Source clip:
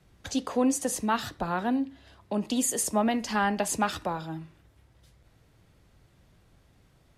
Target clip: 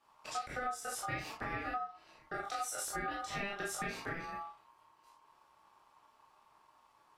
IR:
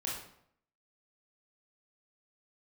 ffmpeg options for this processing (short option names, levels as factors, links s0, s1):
-filter_complex "[1:a]atrim=start_sample=2205,afade=t=out:st=0.15:d=0.01,atrim=end_sample=7056,asetrate=52920,aresample=44100[s0];[0:a][s0]afir=irnorm=-1:irlink=0,aeval=exprs='val(0)*sin(2*PI*1000*n/s)':c=same,acompressor=threshold=0.0251:ratio=6,volume=0.708"